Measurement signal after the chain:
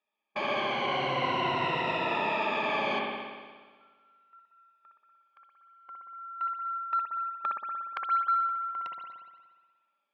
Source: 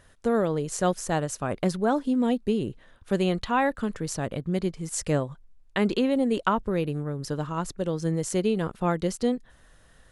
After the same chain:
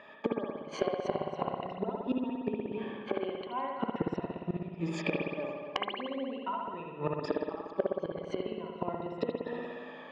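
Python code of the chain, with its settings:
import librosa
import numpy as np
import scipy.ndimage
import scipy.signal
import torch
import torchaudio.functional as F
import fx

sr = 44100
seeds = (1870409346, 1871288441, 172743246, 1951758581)

p1 = fx.spec_ripple(x, sr, per_octave=2.0, drift_hz=-0.41, depth_db=17)
p2 = fx.cabinet(p1, sr, low_hz=170.0, low_slope=24, high_hz=3200.0, hz=(190.0, 300.0, 430.0, 990.0, 1500.0, 2600.0), db=(-7, -9, -7, 7, -8, 5))
p3 = p2 + fx.echo_feedback(p2, sr, ms=260, feedback_pct=33, wet_db=-23.5, dry=0)
p4 = fx.gate_flip(p3, sr, shuts_db=-23.0, range_db=-27)
p5 = fx.peak_eq(p4, sr, hz=430.0, db=7.0, octaves=1.2)
p6 = fx.notch(p5, sr, hz=490.0, q=12.0)
p7 = fx.rev_spring(p6, sr, rt60_s=1.5, pass_ms=(59,), chirp_ms=25, drr_db=-0.5)
p8 = fx.rider(p7, sr, range_db=4, speed_s=0.5)
p9 = p7 + F.gain(torch.from_numpy(p8), -2.0).numpy()
y = 10.0 ** (-13.5 / 20.0) * np.tanh(p9 / 10.0 ** (-13.5 / 20.0))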